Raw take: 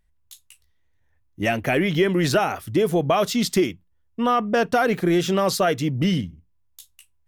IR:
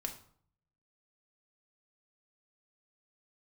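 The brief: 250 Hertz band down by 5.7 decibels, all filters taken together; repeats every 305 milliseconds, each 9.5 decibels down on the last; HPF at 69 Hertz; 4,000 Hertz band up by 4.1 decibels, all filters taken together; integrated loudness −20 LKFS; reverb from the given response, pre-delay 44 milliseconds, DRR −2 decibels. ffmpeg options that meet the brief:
-filter_complex "[0:a]highpass=69,equalizer=frequency=250:width_type=o:gain=-9,equalizer=frequency=4000:width_type=o:gain=5.5,aecho=1:1:305|610|915|1220:0.335|0.111|0.0365|0.012,asplit=2[link_01][link_02];[1:a]atrim=start_sample=2205,adelay=44[link_03];[link_02][link_03]afir=irnorm=-1:irlink=0,volume=2.5dB[link_04];[link_01][link_04]amix=inputs=2:normalize=0,volume=-1.5dB"

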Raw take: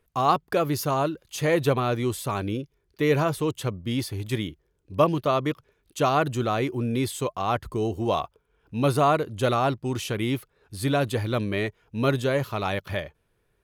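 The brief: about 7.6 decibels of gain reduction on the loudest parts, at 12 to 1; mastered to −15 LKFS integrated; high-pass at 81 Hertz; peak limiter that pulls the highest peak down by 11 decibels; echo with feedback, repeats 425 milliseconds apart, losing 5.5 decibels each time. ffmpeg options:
ffmpeg -i in.wav -af "highpass=81,acompressor=threshold=-22dB:ratio=12,alimiter=limit=-23dB:level=0:latency=1,aecho=1:1:425|850|1275|1700|2125|2550|2975:0.531|0.281|0.149|0.079|0.0419|0.0222|0.0118,volume=17.5dB" out.wav

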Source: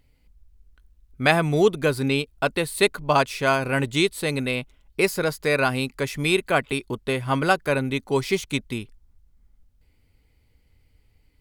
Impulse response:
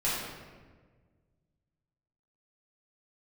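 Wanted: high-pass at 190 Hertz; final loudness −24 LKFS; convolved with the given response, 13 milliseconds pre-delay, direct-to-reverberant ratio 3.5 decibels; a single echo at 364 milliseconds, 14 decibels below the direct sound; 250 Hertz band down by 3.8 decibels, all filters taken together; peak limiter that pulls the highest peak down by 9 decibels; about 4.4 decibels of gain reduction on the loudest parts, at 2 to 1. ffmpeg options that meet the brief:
-filter_complex "[0:a]highpass=190,equalizer=frequency=250:width_type=o:gain=-3.5,acompressor=threshold=-22dB:ratio=2,alimiter=limit=-15.5dB:level=0:latency=1,aecho=1:1:364:0.2,asplit=2[link_01][link_02];[1:a]atrim=start_sample=2205,adelay=13[link_03];[link_02][link_03]afir=irnorm=-1:irlink=0,volume=-13dB[link_04];[link_01][link_04]amix=inputs=2:normalize=0,volume=3dB"

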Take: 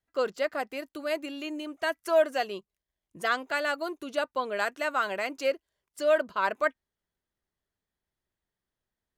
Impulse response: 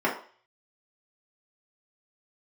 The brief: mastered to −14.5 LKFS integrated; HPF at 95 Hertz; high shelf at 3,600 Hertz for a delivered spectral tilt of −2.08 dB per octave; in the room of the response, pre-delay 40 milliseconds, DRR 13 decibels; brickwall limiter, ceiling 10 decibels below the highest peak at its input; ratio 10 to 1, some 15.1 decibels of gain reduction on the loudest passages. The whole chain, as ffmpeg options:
-filter_complex "[0:a]highpass=95,highshelf=frequency=3600:gain=-6,acompressor=threshold=-34dB:ratio=10,alimiter=level_in=9.5dB:limit=-24dB:level=0:latency=1,volume=-9.5dB,asplit=2[link_01][link_02];[1:a]atrim=start_sample=2205,adelay=40[link_03];[link_02][link_03]afir=irnorm=-1:irlink=0,volume=-27dB[link_04];[link_01][link_04]amix=inputs=2:normalize=0,volume=28.5dB"

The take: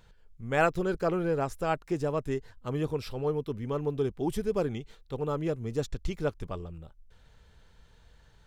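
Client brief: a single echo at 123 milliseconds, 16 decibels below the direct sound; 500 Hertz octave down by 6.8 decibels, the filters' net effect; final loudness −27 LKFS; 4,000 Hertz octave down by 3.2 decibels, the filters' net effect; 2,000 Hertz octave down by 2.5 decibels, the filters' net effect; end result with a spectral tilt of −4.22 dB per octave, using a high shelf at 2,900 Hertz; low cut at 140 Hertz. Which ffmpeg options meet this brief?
ffmpeg -i in.wav -af "highpass=140,equalizer=frequency=500:width_type=o:gain=-8.5,equalizer=frequency=2000:width_type=o:gain=-3,highshelf=frequency=2900:gain=4,equalizer=frequency=4000:width_type=o:gain=-6.5,aecho=1:1:123:0.158,volume=9dB" out.wav

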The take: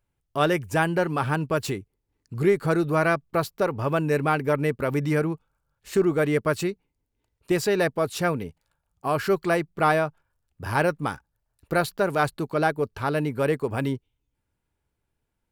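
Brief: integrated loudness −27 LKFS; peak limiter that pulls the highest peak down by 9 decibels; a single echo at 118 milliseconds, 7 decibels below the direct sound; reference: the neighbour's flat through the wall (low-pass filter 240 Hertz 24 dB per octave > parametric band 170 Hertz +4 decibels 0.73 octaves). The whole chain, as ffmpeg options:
ffmpeg -i in.wav -af "alimiter=limit=-16.5dB:level=0:latency=1,lowpass=frequency=240:width=0.5412,lowpass=frequency=240:width=1.3066,equalizer=frequency=170:width_type=o:width=0.73:gain=4,aecho=1:1:118:0.447,volume=4dB" out.wav

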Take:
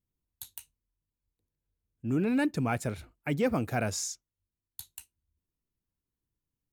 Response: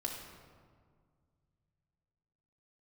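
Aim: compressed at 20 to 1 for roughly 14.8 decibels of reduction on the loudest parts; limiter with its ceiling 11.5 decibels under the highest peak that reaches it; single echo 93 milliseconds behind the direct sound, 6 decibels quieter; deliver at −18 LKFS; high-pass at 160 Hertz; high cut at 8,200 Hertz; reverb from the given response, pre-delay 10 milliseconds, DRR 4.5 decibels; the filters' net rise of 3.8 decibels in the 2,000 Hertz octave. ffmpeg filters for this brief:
-filter_complex "[0:a]highpass=160,lowpass=8200,equalizer=frequency=2000:width_type=o:gain=5,acompressor=threshold=-37dB:ratio=20,alimiter=level_in=12dB:limit=-24dB:level=0:latency=1,volume=-12dB,aecho=1:1:93:0.501,asplit=2[link_01][link_02];[1:a]atrim=start_sample=2205,adelay=10[link_03];[link_02][link_03]afir=irnorm=-1:irlink=0,volume=-5.5dB[link_04];[link_01][link_04]amix=inputs=2:normalize=0,volume=27dB"

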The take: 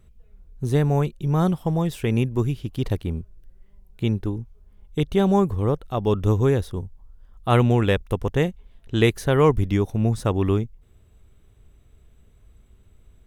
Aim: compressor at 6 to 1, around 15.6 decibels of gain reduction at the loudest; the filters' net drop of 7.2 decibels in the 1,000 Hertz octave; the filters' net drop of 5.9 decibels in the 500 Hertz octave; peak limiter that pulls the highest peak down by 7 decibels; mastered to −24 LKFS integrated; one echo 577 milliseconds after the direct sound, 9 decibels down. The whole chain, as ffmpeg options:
ffmpeg -i in.wav -af "equalizer=frequency=500:width_type=o:gain=-6,equalizer=frequency=1000:width_type=o:gain=-7.5,acompressor=threshold=-33dB:ratio=6,alimiter=level_in=4dB:limit=-24dB:level=0:latency=1,volume=-4dB,aecho=1:1:577:0.355,volume=15.5dB" out.wav

